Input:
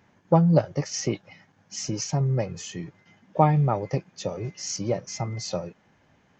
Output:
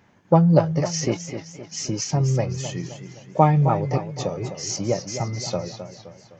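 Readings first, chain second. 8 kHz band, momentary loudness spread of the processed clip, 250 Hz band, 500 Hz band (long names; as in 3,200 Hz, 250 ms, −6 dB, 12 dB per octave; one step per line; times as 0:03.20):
can't be measured, 17 LU, +3.5 dB, +3.5 dB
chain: feedback echo with a swinging delay time 259 ms, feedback 47%, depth 111 cents, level −10 dB
level +3 dB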